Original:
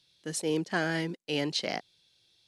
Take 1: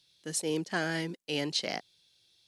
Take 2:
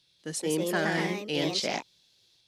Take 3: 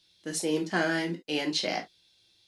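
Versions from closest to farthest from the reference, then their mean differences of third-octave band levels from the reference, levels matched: 1, 3, 2; 1.5, 2.5, 4.5 dB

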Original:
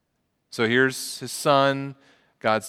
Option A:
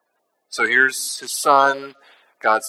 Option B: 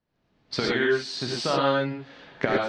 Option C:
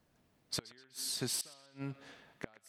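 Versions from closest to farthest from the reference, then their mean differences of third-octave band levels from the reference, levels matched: A, B, C; 6.0, 9.0, 14.0 dB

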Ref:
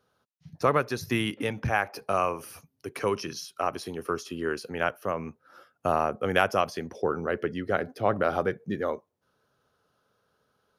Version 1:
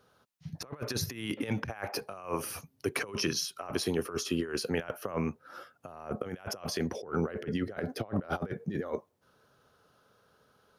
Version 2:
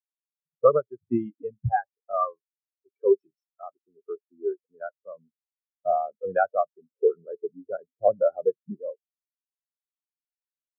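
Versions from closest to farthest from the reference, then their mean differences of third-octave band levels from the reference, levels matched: 1, 2; 9.0, 20.0 dB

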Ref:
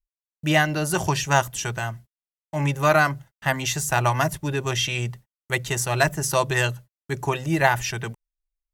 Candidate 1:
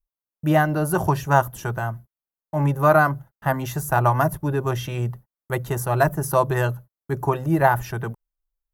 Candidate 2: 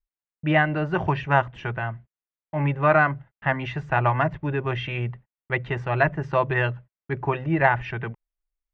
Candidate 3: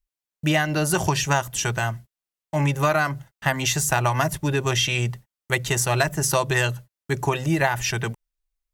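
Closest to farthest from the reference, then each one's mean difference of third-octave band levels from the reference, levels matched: 3, 1, 2; 2.5, 4.5, 7.5 dB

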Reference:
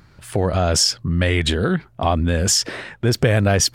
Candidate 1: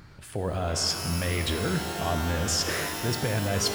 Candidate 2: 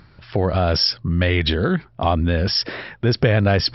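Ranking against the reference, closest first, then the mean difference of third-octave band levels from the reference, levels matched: 2, 1; 3.0, 12.5 dB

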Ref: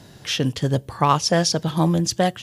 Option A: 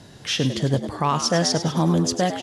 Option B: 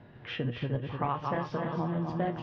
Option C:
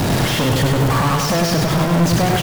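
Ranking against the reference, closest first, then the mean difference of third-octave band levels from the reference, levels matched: A, B, C; 4.5, 10.0, 13.0 dB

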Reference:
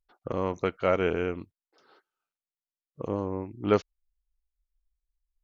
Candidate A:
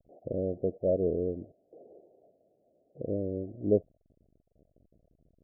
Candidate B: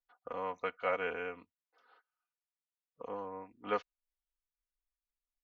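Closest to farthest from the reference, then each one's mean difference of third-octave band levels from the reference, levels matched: B, A; 5.0, 8.5 dB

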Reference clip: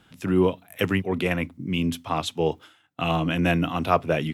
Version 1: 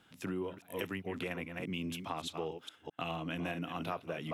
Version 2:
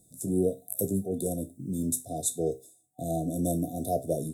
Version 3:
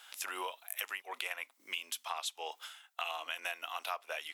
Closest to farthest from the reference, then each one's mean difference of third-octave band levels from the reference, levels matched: 1, 2, 3; 6.0, 11.5, 16.5 dB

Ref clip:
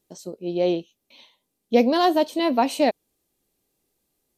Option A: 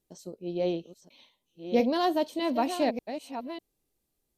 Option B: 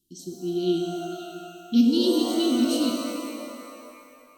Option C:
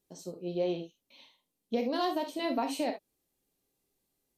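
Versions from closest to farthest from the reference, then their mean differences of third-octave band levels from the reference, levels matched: A, C, B; 1.5, 3.5, 9.5 dB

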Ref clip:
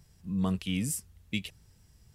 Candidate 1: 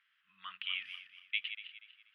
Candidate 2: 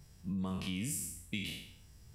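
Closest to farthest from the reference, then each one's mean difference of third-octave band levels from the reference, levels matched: 2, 1; 7.5, 13.5 dB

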